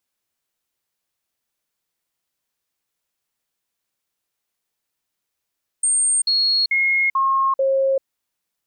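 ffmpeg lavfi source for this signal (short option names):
-f lavfi -i "aevalsrc='0.178*clip(min(mod(t,0.44),0.39-mod(t,0.44))/0.005,0,1)*sin(2*PI*8620*pow(2,-floor(t/0.44)/1)*mod(t,0.44))':d=2.2:s=44100"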